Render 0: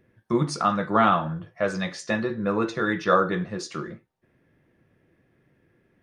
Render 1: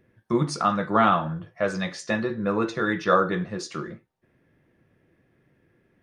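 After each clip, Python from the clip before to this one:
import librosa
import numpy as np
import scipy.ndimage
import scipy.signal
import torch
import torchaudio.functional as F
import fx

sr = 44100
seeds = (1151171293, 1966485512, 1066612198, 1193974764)

y = x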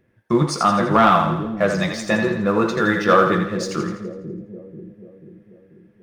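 y = fx.leveller(x, sr, passes=1)
y = fx.echo_split(y, sr, split_hz=450.0, low_ms=488, high_ms=83, feedback_pct=52, wet_db=-7.0)
y = y * librosa.db_to_amplitude(2.0)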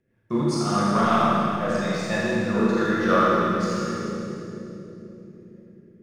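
y = fx.rotary_switch(x, sr, hz=5.0, then_hz=0.8, switch_at_s=2.49)
y = fx.rev_schroeder(y, sr, rt60_s=2.4, comb_ms=27, drr_db=-6.0)
y = y * librosa.db_to_amplitude(-8.5)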